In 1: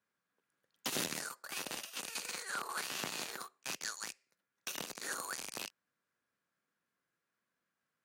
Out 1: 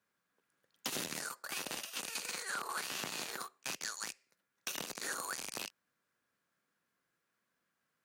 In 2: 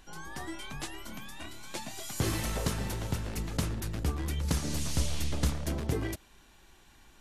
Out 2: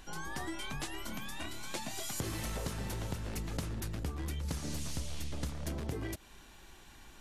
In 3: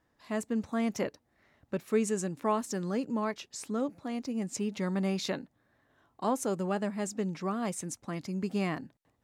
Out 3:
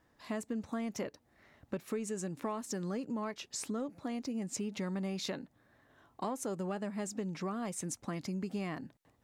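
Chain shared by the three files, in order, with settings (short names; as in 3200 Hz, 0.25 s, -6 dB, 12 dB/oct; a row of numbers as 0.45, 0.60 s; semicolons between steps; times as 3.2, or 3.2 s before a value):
in parallel at -10 dB: soft clip -29.5 dBFS; on the sum: compressor 5:1, threshold -36 dBFS; gain +1 dB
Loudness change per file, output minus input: +0.5, -5.0, -5.5 LU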